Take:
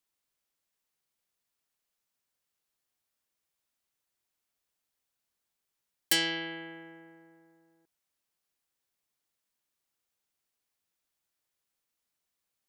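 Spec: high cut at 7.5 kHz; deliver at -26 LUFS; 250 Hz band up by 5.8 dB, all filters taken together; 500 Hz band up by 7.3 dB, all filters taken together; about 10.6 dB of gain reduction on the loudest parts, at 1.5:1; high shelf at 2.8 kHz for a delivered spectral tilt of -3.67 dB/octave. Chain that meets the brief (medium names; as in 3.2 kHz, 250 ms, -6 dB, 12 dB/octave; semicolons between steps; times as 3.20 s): low-pass 7.5 kHz; peaking EQ 250 Hz +4.5 dB; peaking EQ 500 Hz +8 dB; treble shelf 2.8 kHz -9 dB; compression 1.5:1, threshold -55 dBFS; trim +18 dB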